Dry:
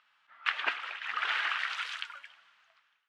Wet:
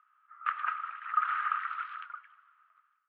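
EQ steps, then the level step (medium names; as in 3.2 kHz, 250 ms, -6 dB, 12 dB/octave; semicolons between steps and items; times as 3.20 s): ladder band-pass 1.3 kHz, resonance 85%; distance through air 310 m; +5.0 dB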